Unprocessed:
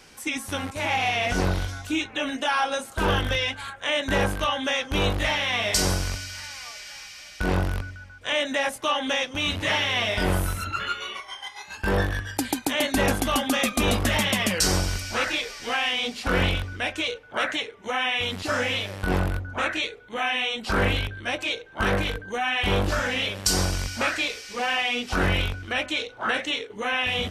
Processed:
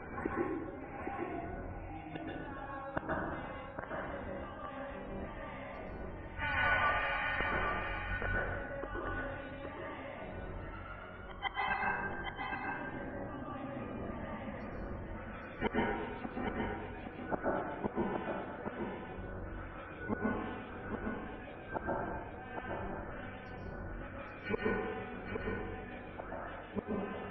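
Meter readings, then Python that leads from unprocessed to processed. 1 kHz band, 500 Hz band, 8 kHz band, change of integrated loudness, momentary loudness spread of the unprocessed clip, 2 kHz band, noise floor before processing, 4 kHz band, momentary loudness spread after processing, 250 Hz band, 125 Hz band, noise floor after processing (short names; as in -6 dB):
-11.0 dB, -11.5 dB, under -40 dB, -14.5 dB, 8 LU, -13.0 dB, -45 dBFS, -26.5 dB, 11 LU, -11.0 dB, -15.5 dB, -47 dBFS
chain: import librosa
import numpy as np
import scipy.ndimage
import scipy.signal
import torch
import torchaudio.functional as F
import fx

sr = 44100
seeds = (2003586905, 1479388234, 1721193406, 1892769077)

p1 = fx.octave_divider(x, sr, octaves=1, level_db=-2.0)
p2 = scipy.signal.sosfilt(scipy.signal.butter(2, 1600.0, 'lowpass', fs=sr, output='sos'), p1)
p3 = fx.hum_notches(p2, sr, base_hz=50, count=3)
p4 = 10.0 ** (-18.0 / 20.0) * np.tanh(p3 / 10.0 ** (-18.0 / 20.0))
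p5 = fx.spec_topn(p4, sr, count=64)
p6 = fx.gate_flip(p5, sr, shuts_db=-31.0, range_db=-32)
p7 = p6 + fx.echo_single(p6, sr, ms=816, db=-5.5, dry=0)
p8 = fx.rev_plate(p7, sr, seeds[0], rt60_s=1.5, hf_ratio=0.4, predelay_ms=110, drr_db=-4.5)
y = F.gain(torch.from_numpy(p8), 9.0).numpy()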